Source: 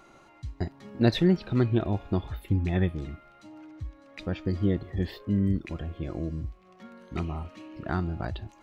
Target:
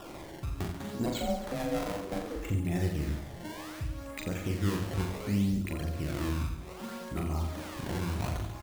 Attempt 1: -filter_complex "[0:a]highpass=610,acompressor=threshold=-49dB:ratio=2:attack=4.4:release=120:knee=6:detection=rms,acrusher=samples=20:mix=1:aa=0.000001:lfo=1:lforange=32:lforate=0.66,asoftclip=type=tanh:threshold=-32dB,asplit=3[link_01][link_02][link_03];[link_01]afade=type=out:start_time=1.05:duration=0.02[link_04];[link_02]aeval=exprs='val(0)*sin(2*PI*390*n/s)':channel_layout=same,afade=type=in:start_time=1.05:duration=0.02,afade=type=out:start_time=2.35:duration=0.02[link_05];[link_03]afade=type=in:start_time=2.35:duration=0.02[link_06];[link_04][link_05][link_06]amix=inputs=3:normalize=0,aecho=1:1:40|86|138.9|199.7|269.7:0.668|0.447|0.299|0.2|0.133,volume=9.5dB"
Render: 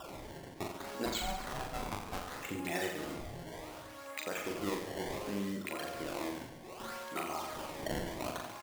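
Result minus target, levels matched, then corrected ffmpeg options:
500 Hz band +3.0 dB
-filter_complex "[0:a]acompressor=threshold=-49dB:ratio=2:attack=4.4:release=120:knee=6:detection=rms,acrusher=samples=20:mix=1:aa=0.000001:lfo=1:lforange=32:lforate=0.66,asoftclip=type=tanh:threshold=-32dB,asplit=3[link_01][link_02][link_03];[link_01]afade=type=out:start_time=1.05:duration=0.02[link_04];[link_02]aeval=exprs='val(0)*sin(2*PI*390*n/s)':channel_layout=same,afade=type=in:start_time=1.05:duration=0.02,afade=type=out:start_time=2.35:duration=0.02[link_05];[link_03]afade=type=in:start_time=2.35:duration=0.02[link_06];[link_04][link_05][link_06]amix=inputs=3:normalize=0,aecho=1:1:40|86|138.9|199.7|269.7:0.668|0.447|0.299|0.2|0.133,volume=9.5dB"

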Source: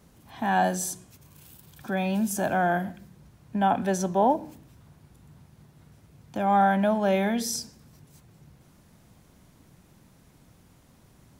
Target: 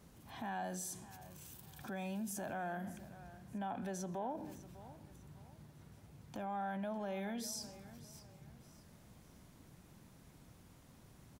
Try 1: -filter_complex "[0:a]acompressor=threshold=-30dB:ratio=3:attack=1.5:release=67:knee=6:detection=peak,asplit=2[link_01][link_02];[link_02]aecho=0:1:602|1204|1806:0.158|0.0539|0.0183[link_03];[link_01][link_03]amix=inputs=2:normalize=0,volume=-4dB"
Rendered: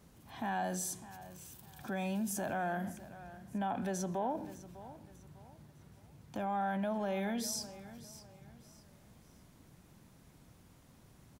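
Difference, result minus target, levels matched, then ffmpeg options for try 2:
downward compressor: peak gain reduction −5.5 dB
-filter_complex "[0:a]acompressor=threshold=-38.5dB:ratio=3:attack=1.5:release=67:knee=6:detection=peak,asplit=2[link_01][link_02];[link_02]aecho=0:1:602|1204|1806:0.158|0.0539|0.0183[link_03];[link_01][link_03]amix=inputs=2:normalize=0,volume=-4dB"

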